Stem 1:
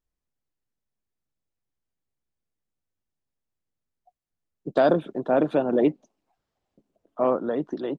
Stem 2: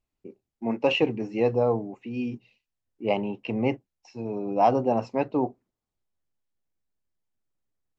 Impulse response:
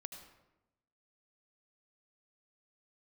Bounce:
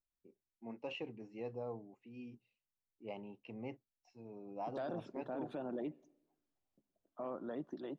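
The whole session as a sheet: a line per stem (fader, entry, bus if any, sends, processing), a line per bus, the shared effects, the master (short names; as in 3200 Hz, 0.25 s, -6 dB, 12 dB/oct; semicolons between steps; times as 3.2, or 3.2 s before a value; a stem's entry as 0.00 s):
-14.5 dB, 0.00 s, send -21 dB, bell 460 Hz -5.5 dB 0.26 oct
4.97 s -20 dB -> 5.5 s -12 dB, 0.00 s, no send, dry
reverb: on, RT60 0.95 s, pre-delay 71 ms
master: limiter -33 dBFS, peak gain reduction 11.5 dB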